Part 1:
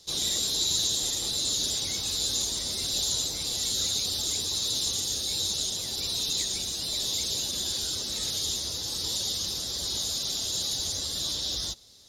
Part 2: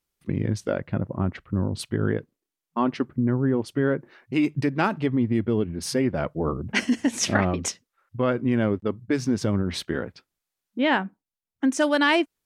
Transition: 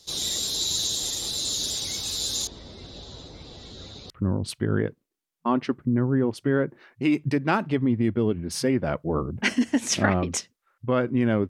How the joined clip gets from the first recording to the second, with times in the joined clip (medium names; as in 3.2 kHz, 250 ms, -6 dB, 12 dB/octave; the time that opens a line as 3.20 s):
part 1
2.47–4.10 s: tape spacing loss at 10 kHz 40 dB
4.10 s: go over to part 2 from 1.41 s